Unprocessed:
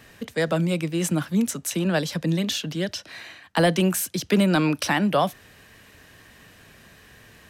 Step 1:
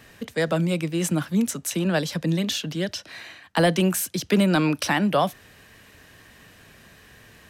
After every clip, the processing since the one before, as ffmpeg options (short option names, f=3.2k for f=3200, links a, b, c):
-af anull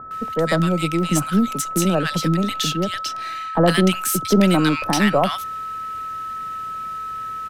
-filter_complex "[0:a]aeval=exprs='if(lt(val(0),0),0.708*val(0),val(0))':c=same,aeval=exprs='val(0)+0.0251*sin(2*PI*1300*n/s)':c=same,acrossover=split=1200[a][b];[b]adelay=110[c];[a][c]amix=inputs=2:normalize=0,volume=5.5dB"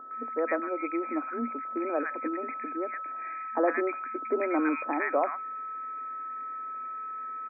-af "afftfilt=real='re*between(b*sr/4096,230,2500)':imag='im*between(b*sr/4096,230,2500)':win_size=4096:overlap=0.75,volume=-8dB"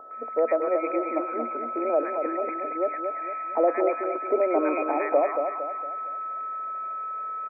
-filter_complex "[0:a]equalizer=f=250:t=o:w=0.67:g=-11,equalizer=f=630:t=o:w=0.67:g=10,equalizer=f=1.6k:t=o:w=0.67:g=-10,acrossover=split=490[a][b];[b]alimiter=limit=-24dB:level=0:latency=1:release=131[c];[a][c]amix=inputs=2:normalize=0,aecho=1:1:230|460|690|920|1150:0.501|0.216|0.0927|0.0398|0.0171,volume=4dB"